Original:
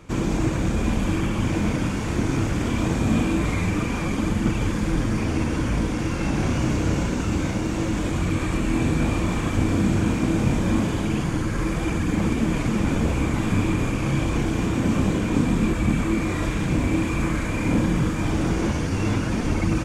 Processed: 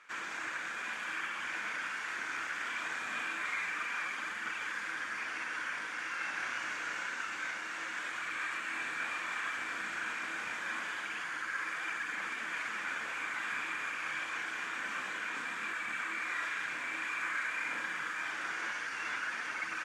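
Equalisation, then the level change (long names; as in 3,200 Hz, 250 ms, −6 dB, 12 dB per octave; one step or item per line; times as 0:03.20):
resonant band-pass 1,600 Hz, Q 3.2
spectral tilt +4 dB per octave
0.0 dB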